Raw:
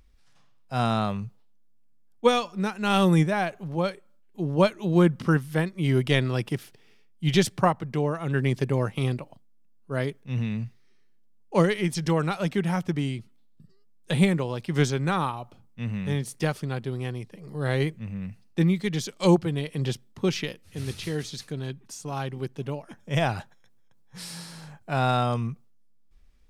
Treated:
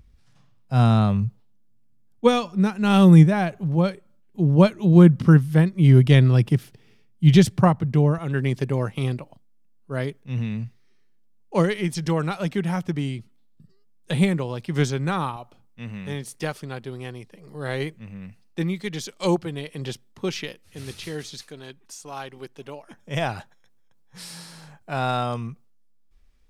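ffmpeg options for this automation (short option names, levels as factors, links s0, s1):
-af "asetnsamples=n=441:p=0,asendcmd='8.18 equalizer g 1.5;15.36 equalizer g -5.5;21.41 equalizer g -14.5;22.87 equalizer g -3',equalizer=f=110:t=o:w=2.5:g=12"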